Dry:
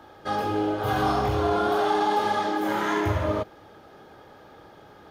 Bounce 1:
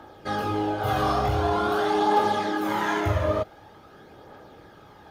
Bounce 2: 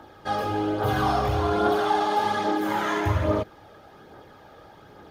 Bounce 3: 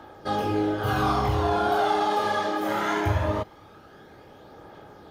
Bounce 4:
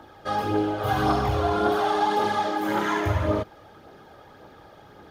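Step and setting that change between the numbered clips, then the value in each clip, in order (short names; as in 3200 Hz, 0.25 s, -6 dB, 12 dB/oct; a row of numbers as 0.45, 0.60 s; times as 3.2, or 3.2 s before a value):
phaser, rate: 0.46, 1.2, 0.21, 1.8 Hz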